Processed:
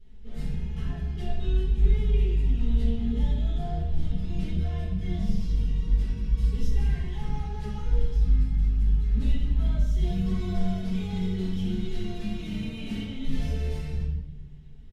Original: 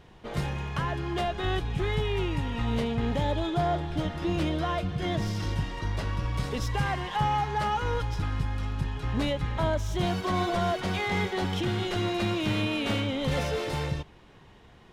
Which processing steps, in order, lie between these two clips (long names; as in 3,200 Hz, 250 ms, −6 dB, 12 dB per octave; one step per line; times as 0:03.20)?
guitar amp tone stack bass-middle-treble 10-0-1
comb filter 4.6 ms, depth 93%
rectangular room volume 320 cubic metres, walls mixed, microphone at 4.1 metres